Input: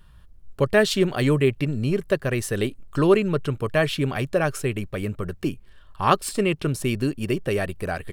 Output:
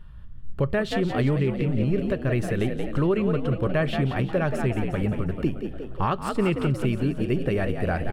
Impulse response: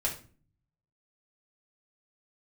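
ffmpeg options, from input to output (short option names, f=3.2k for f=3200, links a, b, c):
-filter_complex "[0:a]bass=f=250:g=6,treble=f=4k:g=-12,asplit=7[a][b][c][d][e][f][g];[b]adelay=178,afreqshift=59,volume=-9dB[h];[c]adelay=356,afreqshift=118,volume=-14.7dB[i];[d]adelay=534,afreqshift=177,volume=-20.4dB[j];[e]adelay=712,afreqshift=236,volume=-26dB[k];[f]adelay=890,afreqshift=295,volume=-31.7dB[l];[g]adelay=1068,afreqshift=354,volume=-37.4dB[m];[a][h][i][j][k][l][m]amix=inputs=7:normalize=0,asplit=2[n][o];[1:a]atrim=start_sample=2205,asetrate=61740,aresample=44100[p];[o][p]afir=irnorm=-1:irlink=0,volume=-19dB[q];[n][q]amix=inputs=2:normalize=0,alimiter=limit=-14dB:level=0:latency=1:release=287"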